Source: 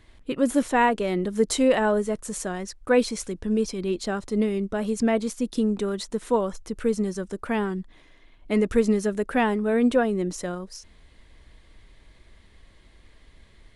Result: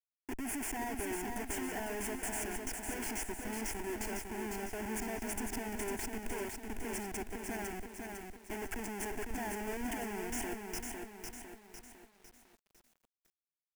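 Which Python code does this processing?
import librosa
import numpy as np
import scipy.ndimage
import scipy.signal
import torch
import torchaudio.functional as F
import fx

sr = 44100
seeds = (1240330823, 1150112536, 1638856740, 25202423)

y = F.preemphasis(torch.from_numpy(x), 0.8).numpy()
y = fx.level_steps(y, sr, step_db=22)
y = fx.schmitt(y, sr, flips_db=-47.5)
y = fx.fixed_phaser(y, sr, hz=800.0, stages=8)
y = fx.echo_crushed(y, sr, ms=503, feedback_pct=55, bits=12, wet_db=-4)
y = y * librosa.db_to_amplitude(11.0)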